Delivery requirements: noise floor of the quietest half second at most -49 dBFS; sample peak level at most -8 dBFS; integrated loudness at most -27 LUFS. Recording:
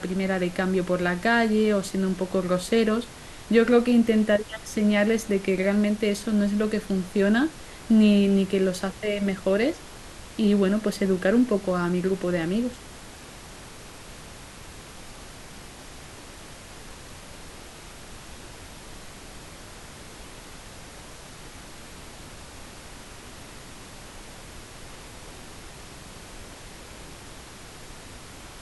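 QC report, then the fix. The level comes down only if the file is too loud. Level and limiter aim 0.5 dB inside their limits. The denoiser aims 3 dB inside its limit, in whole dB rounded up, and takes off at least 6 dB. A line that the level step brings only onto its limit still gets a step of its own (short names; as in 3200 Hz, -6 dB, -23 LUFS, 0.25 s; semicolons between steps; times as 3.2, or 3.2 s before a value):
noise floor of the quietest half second -43 dBFS: fail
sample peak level -7.0 dBFS: fail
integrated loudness -23.5 LUFS: fail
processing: denoiser 6 dB, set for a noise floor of -43 dBFS; gain -4 dB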